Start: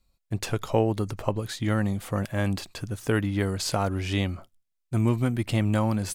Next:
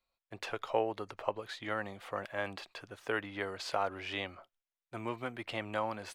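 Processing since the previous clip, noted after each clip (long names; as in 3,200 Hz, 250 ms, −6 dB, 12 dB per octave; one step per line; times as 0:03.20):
three-way crossover with the lows and the highs turned down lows −21 dB, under 430 Hz, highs −17 dB, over 4,000 Hz
level −3.5 dB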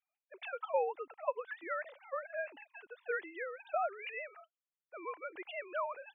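three sine waves on the formant tracks
level −2 dB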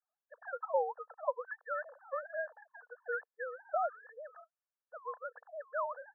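linear-phase brick-wall band-pass 460–1,800 Hz
level +1 dB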